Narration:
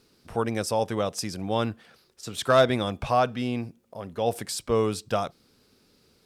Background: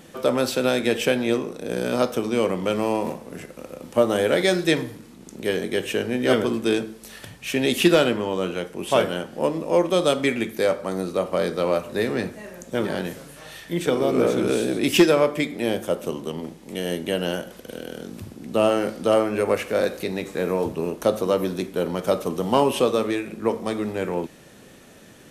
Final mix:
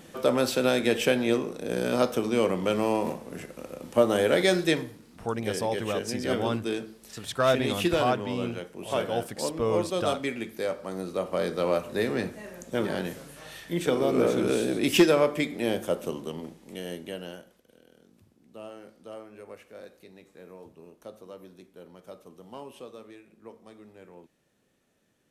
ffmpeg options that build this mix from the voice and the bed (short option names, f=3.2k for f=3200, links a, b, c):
-filter_complex "[0:a]adelay=4900,volume=-4dB[a];[1:a]volume=3dB,afade=t=out:st=4.57:d=0.4:silence=0.473151,afade=t=in:st=10.76:d=0.95:silence=0.530884,afade=t=out:st=15.91:d=1.72:silence=0.1[b];[a][b]amix=inputs=2:normalize=0"